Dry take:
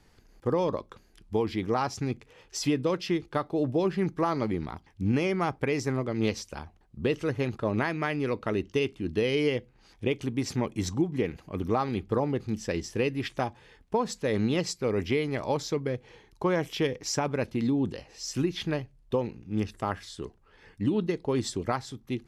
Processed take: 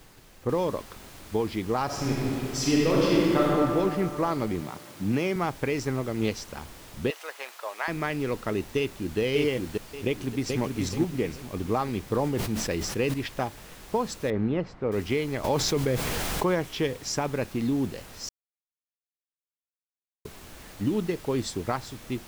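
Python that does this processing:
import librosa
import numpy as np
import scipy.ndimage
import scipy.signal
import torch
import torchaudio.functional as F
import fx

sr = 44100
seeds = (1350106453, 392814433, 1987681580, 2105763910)

y = fx.noise_floor_step(x, sr, seeds[0], at_s=0.49, before_db=-54, after_db=-46, tilt_db=3.0)
y = fx.reverb_throw(y, sr, start_s=1.85, length_s=1.58, rt60_s=2.9, drr_db=-5.5)
y = fx.highpass(y, sr, hz=110.0, slope=24, at=(4.61, 5.36))
y = fx.highpass(y, sr, hz=660.0, slope=24, at=(7.1, 7.88))
y = fx.echo_throw(y, sr, start_s=8.77, length_s=0.42, ms=580, feedback_pct=30, wet_db=-2.0)
y = fx.echo_throw(y, sr, start_s=10.06, length_s=0.55, ms=430, feedback_pct=35, wet_db=-4.0)
y = fx.sustainer(y, sr, db_per_s=38.0, at=(12.05, 13.14))
y = fx.lowpass(y, sr, hz=1600.0, slope=12, at=(14.3, 14.92))
y = fx.env_flatten(y, sr, amount_pct=70, at=(15.44, 16.55))
y = fx.edit(y, sr, fx.silence(start_s=18.29, length_s=1.96), tone=tone)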